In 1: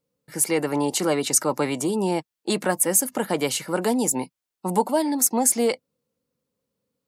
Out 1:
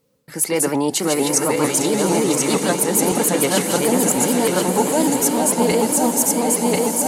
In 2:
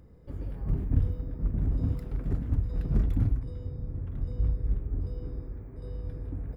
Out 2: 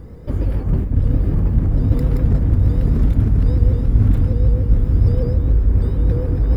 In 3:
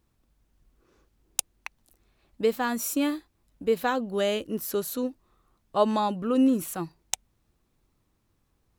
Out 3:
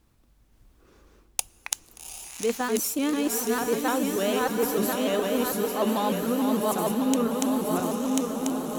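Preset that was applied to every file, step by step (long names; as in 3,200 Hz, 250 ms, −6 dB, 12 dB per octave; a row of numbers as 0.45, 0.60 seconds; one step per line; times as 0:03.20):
feedback delay that plays each chunk backwards 520 ms, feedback 53%, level −2 dB
reversed playback
downward compressor 6 to 1, threshold −30 dBFS
reversed playback
feedback delay with all-pass diffusion 785 ms, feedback 64%, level −6.5 dB
coupled-rooms reverb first 0.2 s, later 3.8 s, from −19 dB, DRR 19 dB
pitch modulation by a square or saw wave saw up 6.7 Hz, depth 100 cents
normalise the peak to −3 dBFS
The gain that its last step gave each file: +13.5, +17.5, +6.5 decibels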